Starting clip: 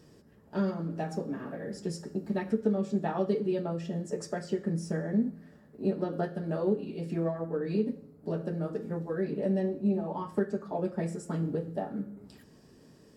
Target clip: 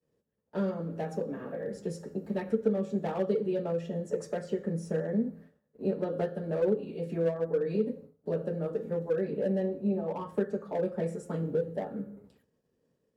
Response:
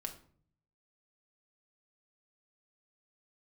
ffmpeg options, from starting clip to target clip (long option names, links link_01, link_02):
-filter_complex "[0:a]agate=range=-33dB:threshold=-44dB:ratio=3:detection=peak,equalizer=frequency=315:width_type=o:width=0.33:gain=-3,equalizer=frequency=500:width_type=o:width=0.33:gain=11,equalizer=frequency=5000:width_type=o:width=0.33:gain=-8,equalizer=frequency=8000:width_type=o:width=0.33:gain=-4,acrossover=split=160|570|4500[link_01][link_02][link_03][link_04];[link_03]volume=33dB,asoftclip=hard,volume=-33dB[link_05];[link_01][link_02][link_05][link_04]amix=inputs=4:normalize=0,volume=-2dB"